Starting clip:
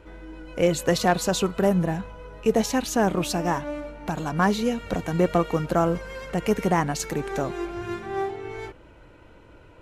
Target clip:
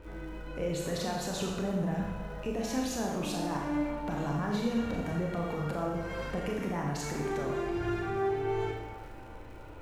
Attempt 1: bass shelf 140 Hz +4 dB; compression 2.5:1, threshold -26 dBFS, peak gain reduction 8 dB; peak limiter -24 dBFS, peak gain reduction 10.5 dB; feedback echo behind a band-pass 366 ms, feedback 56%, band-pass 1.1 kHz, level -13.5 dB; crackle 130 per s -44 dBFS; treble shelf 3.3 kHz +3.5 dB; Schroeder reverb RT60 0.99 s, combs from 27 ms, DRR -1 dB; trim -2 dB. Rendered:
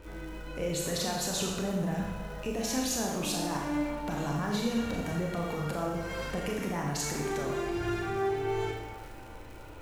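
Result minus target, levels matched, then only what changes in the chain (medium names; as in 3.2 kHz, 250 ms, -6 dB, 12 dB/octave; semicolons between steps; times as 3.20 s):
8 kHz band +7.0 dB
change: treble shelf 3.3 kHz -6 dB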